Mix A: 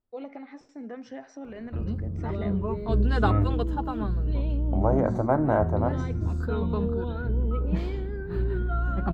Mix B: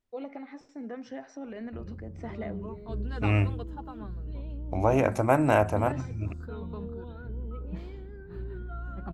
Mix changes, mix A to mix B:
second voice: remove running mean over 17 samples; background -11.0 dB

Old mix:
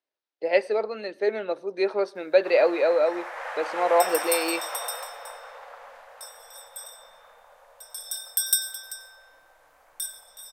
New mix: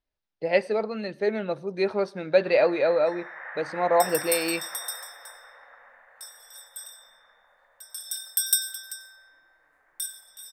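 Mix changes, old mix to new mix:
speech: remove HPF 330 Hz 24 dB/oct; first sound: add ladder low-pass 2000 Hz, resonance 70%; master: add low shelf 180 Hz -10 dB

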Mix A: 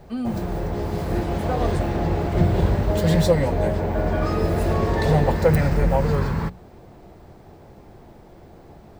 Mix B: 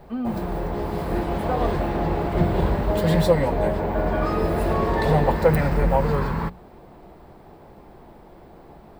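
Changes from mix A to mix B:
first voice: add Gaussian blur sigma 2.6 samples; master: add fifteen-band EQ 100 Hz -8 dB, 1000 Hz +4 dB, 6300 Hz -8 dB

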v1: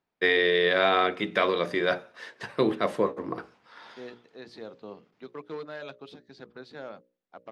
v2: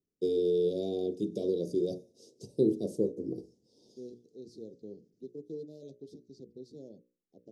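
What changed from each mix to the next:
master: add elliptic band-stop 410–5700 Hz, stop band 80 dB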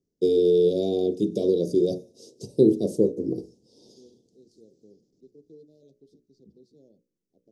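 first voice +8.5 dB; second voice -8.5 dB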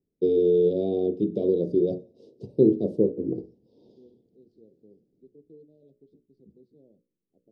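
master: add air absorption 450 m

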